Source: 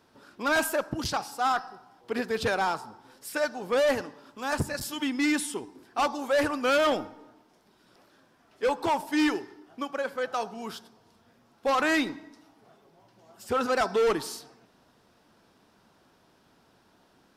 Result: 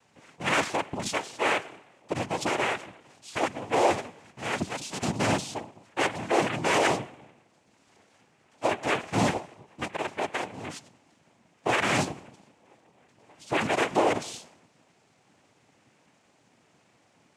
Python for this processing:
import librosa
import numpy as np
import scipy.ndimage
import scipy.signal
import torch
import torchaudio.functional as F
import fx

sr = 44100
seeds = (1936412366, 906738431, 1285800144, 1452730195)

y = fx.noise_vocoder(x, sr, seeds[0], bands=4)